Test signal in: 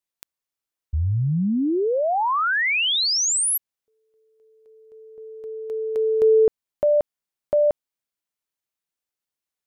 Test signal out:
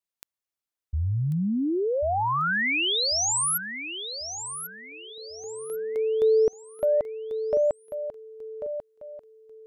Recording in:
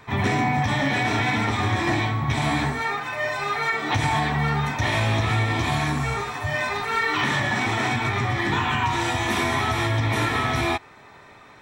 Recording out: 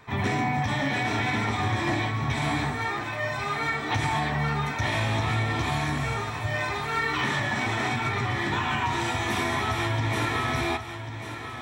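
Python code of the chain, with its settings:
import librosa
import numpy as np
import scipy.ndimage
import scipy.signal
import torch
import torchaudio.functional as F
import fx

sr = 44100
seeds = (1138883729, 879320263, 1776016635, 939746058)

y = fx.echo_feedback(x, sr, ms=1092, feedback_pct=35, wet_db=-10.0)
y = y * 10.0 ** (-4.0 / 20.0)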